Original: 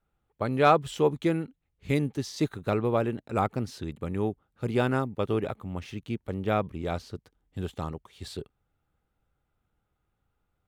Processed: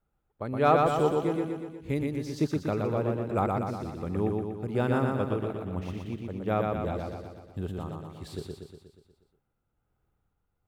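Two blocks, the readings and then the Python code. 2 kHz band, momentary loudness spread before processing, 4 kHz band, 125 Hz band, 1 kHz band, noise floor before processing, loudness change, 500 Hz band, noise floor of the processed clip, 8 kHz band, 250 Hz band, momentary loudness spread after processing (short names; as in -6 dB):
-3.0 dB, 16 LU, -5.5 dB, 0.0 dB, -0.5 dB, -79 dBFS, -0.5 dB, 0.0 dB, -79 dBFS, n/a, 0.0 dB, 15 LU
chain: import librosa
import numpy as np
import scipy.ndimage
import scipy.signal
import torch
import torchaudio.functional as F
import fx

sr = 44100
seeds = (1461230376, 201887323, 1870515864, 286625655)

y = fx.peak_eq(x, sr, hz=4600.0, db=-6.5, octaves=3.0)
y = y * (1.0 - 0.45 / 2.0 + 0.45 / 2.0 * np.cos(2.0 * np.pi * 1.2 * (np.arange(len(y)) / sr)))
y = fx.echo_feedback(y, sr, ms=120, feedback_pct=58, wet_db=-3.0)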